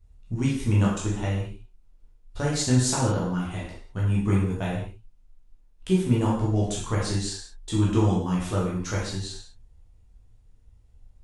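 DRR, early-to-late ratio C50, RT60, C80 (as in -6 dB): -5.5 dB, 2.0 dB, no single decay rate, 6.0 dB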